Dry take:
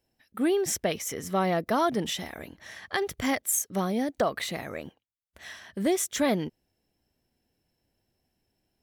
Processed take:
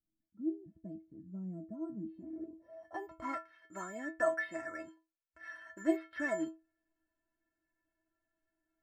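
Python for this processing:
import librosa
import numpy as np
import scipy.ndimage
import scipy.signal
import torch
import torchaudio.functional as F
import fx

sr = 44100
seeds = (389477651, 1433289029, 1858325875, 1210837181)

y = (np.kron(scipy.signal.resample_poly(x, 1, 6), np.eye(6)[0]) * 6)[:len(x)]
y = fx.stiff_resonator(y, sr, f0_hz=320.0, decay_s=0.27, stiffness=0.008)
y = fx.filter_sweep_lowpass(y, sr, from_hz=190.0, to_hz=1600.0, start_s=1.99, end_s=3.45, q=4.0)
y = y * librosa.db_to_amplitude(5.0)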